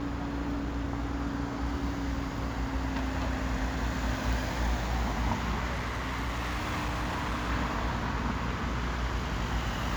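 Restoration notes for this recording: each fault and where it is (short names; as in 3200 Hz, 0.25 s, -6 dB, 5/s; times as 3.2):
buzz 60 Hz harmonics 37 -36 dBFS
5.72–7.5 clipped -28.5 dBFS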